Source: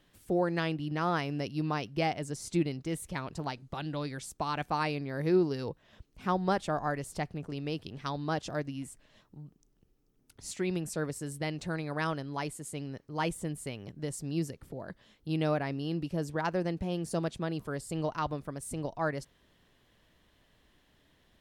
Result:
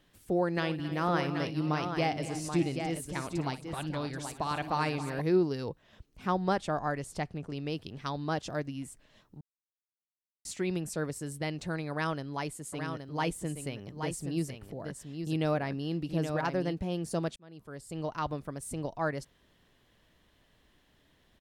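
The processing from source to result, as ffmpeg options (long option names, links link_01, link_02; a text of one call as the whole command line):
ffmpeg -i in.wav -filter_complex "[0:a]asplit=3[link_01][link_02][link_03];[link_01]afade=type=out:start_time=0.54:duration=0.02[link_04];[link_02]aecho=1:1:58|212|270|581|781:0.188|0.112|0.188|0.119|0.447,afade=type=in:start_time=0.54:duration=0.02,afade=type=out:start_time=5.2:duration=0.02[link_05];[link_03]afade=type=in:start_time=5.2:duration=0.02[link_06];[link_04][link_05][link_06]amix=inputs=3:normalize=0,asettb=1/sr,asplit=3[link_07][link_08][link_09];[link_07]atrim=end=6.264[link_10];[link_08]atrim=start=6.26:end=7.7,asetpts=PTS-STARTPTS,afade=type=in:duration=0.004:curve=qsin,afade=type=out:start_time=1.436:duration=0.004:curve=qsin,lowpass=11000[link_11];[link_09]atrim=start=7.696[link_12];[link_10][link_11]acrossfade=duration=0.004:curve1=hsin:curve2=qsin[link_13];[link_13][link_12]acrossfade=duration=0.004:curve1=qsin:curve2=hsin,asplit=3[link_14][link_15][link_16];[link_14]afade=type=out:start_time=12.72:duration=0.02[link_17];[link_15]aecho=1:1:823:0.473,afade=type=in:start_time=12.72:duration=0.02,afade=type=out:start_time=16.72:duration=0.02[link_18];[link_16]afade=type=in:start_time=16.72:duration=0.02[link_19];[link_17][link_18][link_19]amix=inputs=3:normalize=0,asplit=4[link_20][link_21][link_22][link_23];[link_20]atrim=end=9.41,asetpts=PTS-STARTPTS,afade=type=out:start_time=9.406:duration=0.004:curve=hsin[link_24];[link_21]atrim=start=9.41:end=10.45,asetpts=PTS-STARTPTS,volume=0[link_25];[link_22]atrim=start=10.45:end=17.36,asetpts=PTS-STARTPTS,afade=type=in:duration=0.004:curve=hsin,afade=type=out:start_time=6.906:duration=0.004:curve=hsin[link_26];[link_23]atrim=start=17.36,asetpts=PTS-STARTPTS,afade=type=in:duration=0.94[link_27];[link_24][link_25][link_26][link_27]concat=n=4:v=0:a=1" out.wav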